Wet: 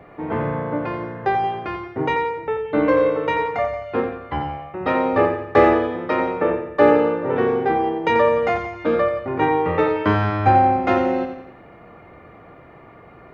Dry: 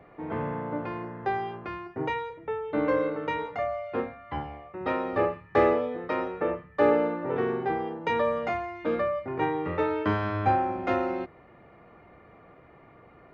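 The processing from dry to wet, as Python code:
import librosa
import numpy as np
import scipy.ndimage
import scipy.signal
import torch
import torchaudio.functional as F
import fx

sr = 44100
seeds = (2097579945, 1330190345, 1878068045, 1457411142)

y = fx.echo_feedback(x, sr, ms=88, feedback_pct=47, wet_db=-8)
y = y * 10.0 ** (8.0 / 20.0)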